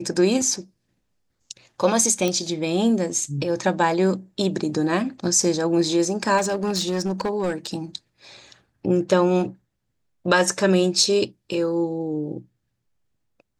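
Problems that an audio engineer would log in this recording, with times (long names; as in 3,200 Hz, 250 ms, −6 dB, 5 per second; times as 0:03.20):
0:02.28: click −10 dBFS
0:06.37–0:07.67: clipping −18.5 dBFS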